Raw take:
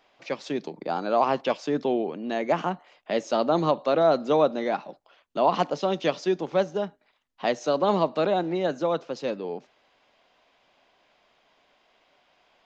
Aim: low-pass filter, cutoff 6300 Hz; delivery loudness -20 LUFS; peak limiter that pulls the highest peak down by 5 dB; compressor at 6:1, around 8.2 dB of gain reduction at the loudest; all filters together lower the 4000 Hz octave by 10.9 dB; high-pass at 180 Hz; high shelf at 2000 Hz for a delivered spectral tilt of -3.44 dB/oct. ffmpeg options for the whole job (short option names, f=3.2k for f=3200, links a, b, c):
-af "highpass=180,lowpass=6.3k,highshelf=f=2k:g=-8.5,equalizer=f=4k:t=o:g=-5.5,acompressor=threshold=-26dB:ratio=6,volume=14dB,alimiter=limit=-8.5dB:level=0:latency=1"